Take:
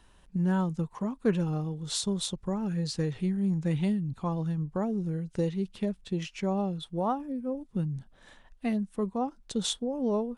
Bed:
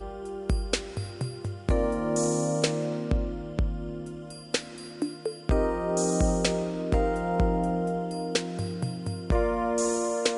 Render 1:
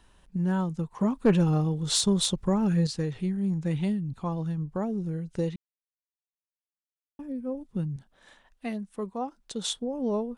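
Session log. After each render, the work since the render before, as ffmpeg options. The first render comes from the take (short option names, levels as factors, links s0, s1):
-filter_complex "[0:a]asettb=1/sr,asplit=3[s0][s1][s2];[s0]atrim=end=0.994[s3];[s1]atrim=start=0.99:end=2.87,asetpts=PTS-STARTPTS,afade=t=in:d=0.004:c=qsin,afade=t=out:st=1.876:d=0.004:c=qsin,aeval=exprs='0.211*sin(PI/2*1.41*val(0)/0.211)':c=same[s4];[s2]atrim=start=2.866[s5];[s3][s4]acrossfade=d=0.004:c1=hsin:c2=qsin[s6];[s6][s5]acrossfade=d=0.004:c1=qsin:c2=hsin,asettb=1/sr,asplit=3[s7][s8][s9];[s7]atrim=end=7.964[s10];[s8]atrim=start=7.96:end=9.77,asetpts=PTS-STARTPTS,afade=t=in:d=0.004:c=qsin,afade=t=out:st=1.806:d=0.004:c=qsin,lowshelf=f=210:g=-10[s11];[s9]atrim=start=9.766[s12];[s10][s11]acrossfade=d=0.004:c1=hsin:c2=qsin[s13];[s13][s12]acrossfade=d=0.004:c1=qsin:c2=hsin,asplit=3[s14][s15][s16];[s14]atrim=end=5.56,asetpts=PTS-STARTPTS,afade=t=out:st=5.556:d=0.004:c=hsin[s17];[s15]atrim=start=5.56:end=7.19,asetpts=PTS-STARTPTS,volume=0[s18];[s16]atrim=start=7.19,asetpts=PTS-STARTPTS,afade=t=in:d=0.004:c=hsin[s19];[s17][s18][s19]concat=n=3:v=0:a=1"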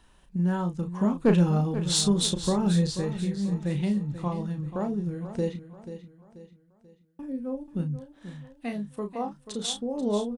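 -filter_complex "[0:a]asplit=2[s0][s1];[s1]adelay=34,volume=0.447[s2];[s0][s2]amix=inputs=2:normalize=0,asplit=2[s3][s4];[s4]aecho=0:1:486|972|1458|1944:0.251|0.1|0.0402|0.0161[s5];[s3][s5]amix=inputs=2:normalize=0"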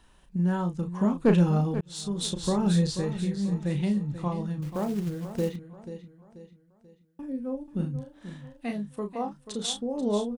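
-filter_complex "[0:a]asettb=1/sr,asplit=3[s0][s1][s2];[s0]atrim=end=4.624[s3];[s1]atrim=start=4.62:end=5.56,asetpts=PTS-STARTPTS,afade=t=in:d=0.004:c=qsin,afade=t=out:st=0.936:d=0.004:c=qsin,acrusher=bits=5:mode=log:mix=0:aa=0.000001[s4];[s2]atrim=start=5.556[s5];[s3][s4]acrossfade=d=0.004:c1=hsin:c2=qsin[s6];[s6][s5]acrossfade=d=0.004:c1=qsin:c2=hsin,asettb=1/sr,asplit=3[s7][s8][s9];[s7]atrim=end=7.744[s10];[s8]atrim=start=7.74:end=8.71,asetpts=PTS-STARTPTS,afade=t=in:d=0.004:c=qsin,afade=t=out:st=0.966:d=0.004:c=qsin,asplit=2[s11][s12];[s12]adelay=43,volume=0.562[s13];[s11][s13]amix=inputs=2:normalize=0,atrim=end_sample=42777[s14];[s9]atrim=start=8.706[s15];[s10][s14]acrossfade=d=0.004:c1=hsin:c2=qsin[s16];[s16][s15]acrossfade=d=0.004:c1=qsin:c2=hsin,asplit=2[s17][s18];[s17]atrim=end=1.81,asetpts=PTS-STARTPTS,afade=t=out:st=1.806:d=0.004:c=hsin[s19];[s18]atrim=start=1.81,asetpts=PTS-STARTPTS,afade=t=in:d=0.79[s20];[s19][s20]concat=n=2:v=0:a=1"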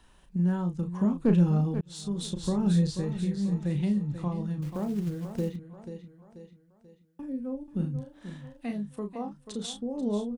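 -filter_complex "[0:a]acrossover=split=340[s0][s1];[s1]acompressor=threshold=0.00398:ratio=1.5[s2];[s0][s2]amix=inputs=2:normalize=0"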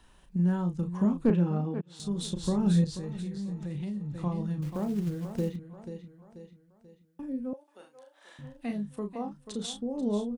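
-filter_complex "[0:a]asettb=1/sr,asplit=3[s0][s1][s2];[s0]atrim=end=1.304[s3];[s1]atrim=start=1.3:end=2,asetpts=PTS-STARTPTS,afade=t=in:d=0.004:c=qsin,afade=t=out:st=0.696:d=0.004:c=qsin,acrossover=split=160 3100:gain=0.0794 1 0.224[s4][s5][s6];[s4][s5][s6]amix=inputs=3:normalize=0[s7];[s2]atrim=start=1.996[s8];[s3][s7]acrossfade=d=0.004:c1=hsin:c2=qsin[s9];[s9][s8]acrossfade=d=0.004:c1=qsin:c2=hsin,asettb=1/sr,asplit=3[s10][s11][s12];[s10]atrim=end=2.844[s13];[s11]atrim=start=2.84:end=4.21,asetpts=PTS-STARTPTS,afade=t=in:d=0.004:c=qsin,afade=t=out:st=1.366:d=0.004:c=qsin,acompressor=threshold=0.0224:ratio=4:attack=3.2:release=140:knee=1:detection=peak[s14];[s12]atrim=start=4.206[s15];[s13][s14]acrossfade=d=0.004:c1=hsin:c2=qsin[s16];[s16][s15]acrossfade=d=0.004:c1=qsin:c2=hsin,asettb=1/sr,asplit=3[s17][s18][s19];[s17]atrim=end=7.534[s20];[s18]atrim=start=7.53:end=8.39,asetpts=PTS-STARTPTS,afade=t=in:d=0.004:c=qsin,afade=t=out:st=0.856:d=0.004:c=qsin,highpass=f=580:w=0.5412,highpass=f=580:w=1.3066[s21];[s19]atrim=start=8.386[s22];[s20][s21]acrossfade=d=0.004:c1=hsin:c2=qsin[s23];[s23][s22]acrossfade=d=0.004:c1=qsin:c2=hsin"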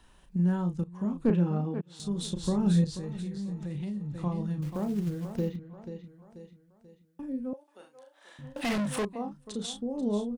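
-filter_complex "[0:a]asettb=1/sr,asplit=3[s0][s1][s2];[s0]atrim=end=5.364[s3];[s1]atrim=start=5.36:end=6.04,asetpts=PTS-STARTPTS,afade=t=in:d=0.004:c=qsin,afade=t=out:st=0.676:d=0.004:c=qsin,equalizer=f=8800:w=1.8:g=-12[s4];[s2]atrim=start=6.036[s5];[s3][s4]acrossfade=d=0.004:c1=hsin:c2=qsin[s6];[s6][s5]acrossfade=d=0.004:c1=qsin:c2=hsin,asettb=1/sr,asplit=3[s7][s8][s9];[s7]atrim=end=8.564[s10];[s8]atrim=start=8.56:end=9.05,asetpts=PTS-STARTPTS,afade=t=in:d=0.004:c=qsin,afade=t=out:st=0.486:d=0.004:c=qsin,asplit=2[s11][s12];[s12]highpass=f=720:p=1,volume=56.2,asoftclip=type=tanh:threshold=0.075[s13];[s11][s13]amix=inputs=2:normalize=0,lowpass=f=6500:p=1,volume=0.501[s14];[s9]atrim=start=9.046[s15];[s10][s14]acrossfade=d=0.004:c1=hsin:c2=qsin[s16];[s16][s15]acrossfade=d=0.004:c1=qsin:c2=hsin,asplit=2[s17][s18];[s17]atrim=end=0.84,asetpts=PTS-STARTPTS,afade=t=out:st=0.836:d=0.004:c=hsin:silence=0.177828[s19];[s18]atrim=start=0.84,asetpts=PTS-STARTPTS,afade=t=in:d=0.51:silence=0.177828[s20];[s19][s20]concat=n=2:v=0:a=1"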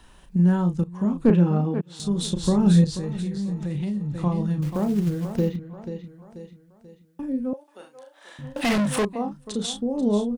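-af "volume=2.37"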